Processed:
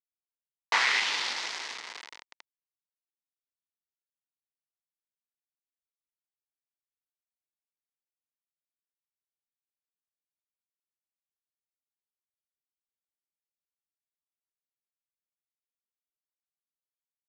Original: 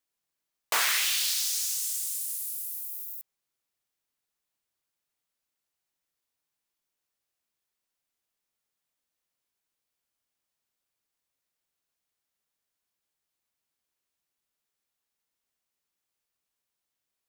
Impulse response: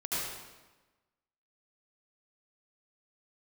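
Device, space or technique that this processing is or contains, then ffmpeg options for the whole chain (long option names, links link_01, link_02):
hand-held game console: -af "acrusher=bits=3:mix=0:aa=0.000001,highpass=420,equalizer=frequency=590:width_type=q:width=4:gain=-5,equalizer=frequency=930:width_type=q:width=4:gain=6,equalizer=frequency=2000:width_type=q:width=4:gain=7,lowpass=frequency=5200:width=0.5412,lowpass=frequency=5200:width=1.3066"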